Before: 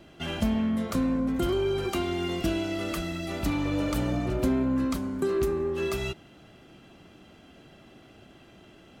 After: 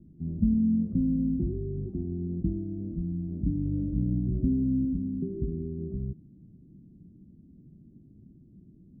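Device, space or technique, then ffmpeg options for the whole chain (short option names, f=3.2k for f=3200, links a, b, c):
the neighbour's flat through the wall: -filter_complex "[0:a]lowpass=f=260:w=0.5412,lowpass=f=260:w=1.3066,equalizer=f=170:t=o:w=0.63:g=4.5,asettb=1/sr,asplit=3[a][b][c];[a]atrim=end=0.514[d];[b]atrim=start=0.51:end=1.48,asetpts=PTS-STARTPTS,afade=t=in:d=0.004:c=qsin,afade=t=out:st=0.966:d=0.004:c=qsin,equalizer=f=1.6k:t=o:w=1.1:g=11[e];[c]atrim=start=1.476[f];[d][e]acrossfade=d=0.004:c1=hsin:c2=qsin[g];[g][f]acrossfade=d=0.004:c1=qsin:c2=hsin,volume=1.5dB"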